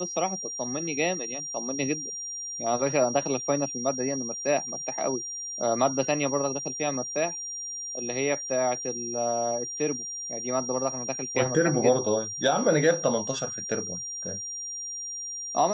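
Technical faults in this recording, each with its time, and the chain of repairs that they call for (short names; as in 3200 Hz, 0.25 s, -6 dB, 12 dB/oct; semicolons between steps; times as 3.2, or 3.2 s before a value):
tone 5700 Hz -33 dBFS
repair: notch 5700 Hz, Q 30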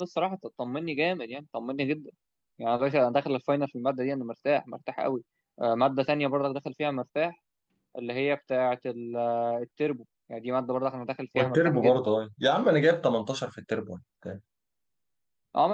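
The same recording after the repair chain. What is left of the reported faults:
none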